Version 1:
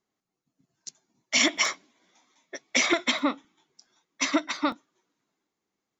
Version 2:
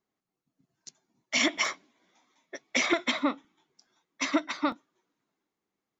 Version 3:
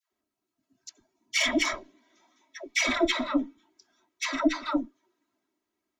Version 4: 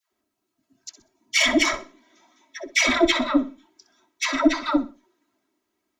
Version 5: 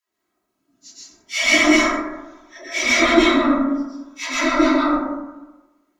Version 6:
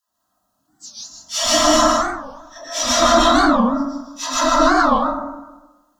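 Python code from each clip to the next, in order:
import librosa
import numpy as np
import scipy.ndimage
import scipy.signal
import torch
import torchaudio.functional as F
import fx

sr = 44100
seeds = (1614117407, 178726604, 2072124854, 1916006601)

y1 = fx.high_shelf(x, sr, hz=5100.0, db=-8.5)
y1 = y1 * librosa.db_to_amplitude(-1.5)
y2 = fx.diode_clip(y1, sr, knee_db=-19.0)
y2 = y2 + 0.83 * np.pad(y2, (int(3.1 * sr / 1000.0), 0))[:len(y2)]
y2 = fx.dispersion(y2, sr, late='lows', ms=128.0, hz=750.0)
y3 = fx.echo_feedback(y2, sr, ms=63, feedback_pct=28, wet_db=-14.5)
y3 = y3 * librosa.db_to_amplitude(6.0)
y4 = fx.phase_scramble(y3, sr, seeds[0], window_ms=100)
y4 = fx.rev_plate(y4, sr, seeds[1], rt60_s=1.1, hf_ratio=0.35, predelay_ms=105, drr_db=-8.0)
y4 = y4 * librosa.db_to_amplitude(-3.0)
y5 = fx.fixed_phaser(y4, sr, hz=920.0, stages=4)
y5 = y5 + 10.0 ** (-6.5 / 20.0) * np.pad(y5, (int(153 * sr / 1000.0), 0))[:len(y5)]
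y5 = fx.record_warp(y5, sr, rpm=45.0, depth_cents=250.0)
y5 = y5 * librosa.db_to_amplitude(7.5)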